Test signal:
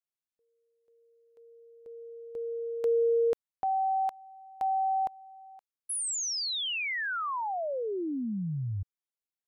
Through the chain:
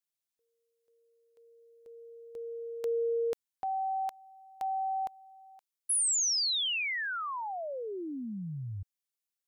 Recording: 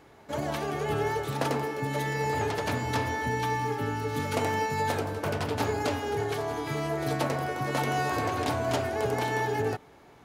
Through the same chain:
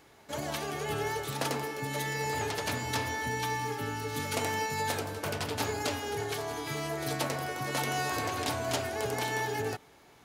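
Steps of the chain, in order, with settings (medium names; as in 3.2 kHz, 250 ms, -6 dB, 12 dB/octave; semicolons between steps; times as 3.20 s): treble shelf 2.3 kHz +10.5 dB; trim -5.5 dB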